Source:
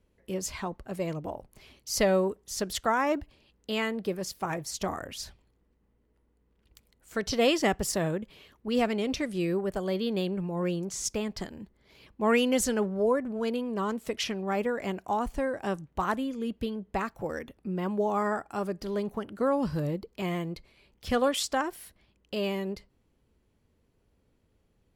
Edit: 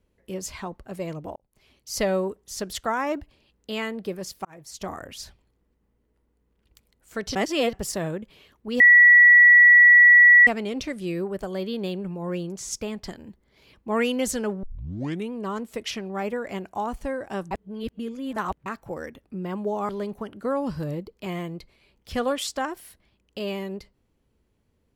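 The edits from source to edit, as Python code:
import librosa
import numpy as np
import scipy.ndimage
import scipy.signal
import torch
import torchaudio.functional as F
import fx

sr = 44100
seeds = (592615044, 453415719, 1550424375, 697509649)

y = fx.edit(x, sr, fx.fade_in_span(start_s=1.36, length_s=0.64),
    fx.fade_in_span(start_s=4.45, length_s=0.69, curve='qsin'),
    fx.reverse_span(start_s=7.35, length_s=0.38),
    fx.insert_tone(at_s=8.8, length_s=1.67, hz=1940.0, db=-9.0),
    fx.tape_start(start_s=12.96, length_s=0.69),
    fx.reverse_span(start_s=15.84, length_s=1.15),
    fx.cut(start_s=18.22, length_s=0.63), tone=tone)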